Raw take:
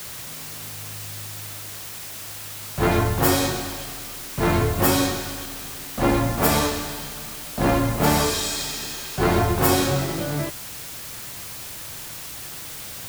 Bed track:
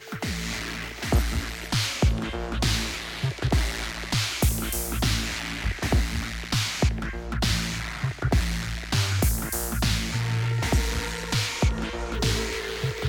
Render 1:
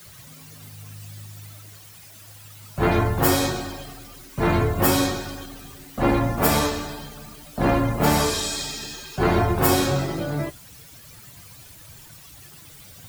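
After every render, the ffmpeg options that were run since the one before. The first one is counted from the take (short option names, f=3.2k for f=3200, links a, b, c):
-af "afftdn=nr=13:nf=-36"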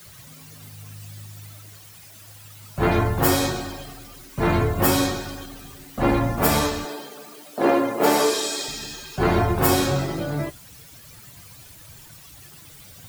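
-filter_complex "[0:a]asettb=1/sr,asplit=3[a][b][c];[a]atrim=end=6.854[d];[b]atrim=start=6.85:end=8.68,asetpts=PTS-STARTPTS,afade=t=in:d=0.004:c=qsin,afade=t=out:st=1.826:d=0.004:c=qsin,highpass=f=370:t=q:w=2[e];[c]atrim=start=8.676[f];[d][e]acrossfade=d=0.004:c1=hsin:c2=qsin[g];[g][f]acrossfade=d=0.004:c1=qsin:c2=hsin"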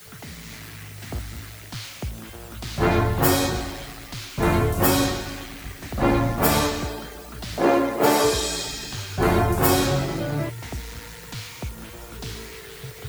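-filter_complex "[1:a]volume=-10dB[a];[0:a][a]amix=inputs=2:normalize=0"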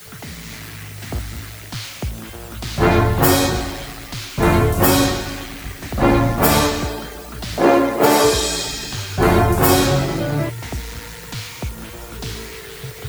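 -af "volume=5.5dB,alimiter=limit=-2dB:level=0:latency=1"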